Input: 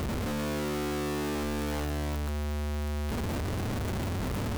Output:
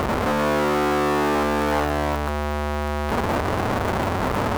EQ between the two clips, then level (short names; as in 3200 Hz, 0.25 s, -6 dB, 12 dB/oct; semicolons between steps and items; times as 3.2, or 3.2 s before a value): bell 940 Hz +14 dB 2.9 oct; +3.0 dB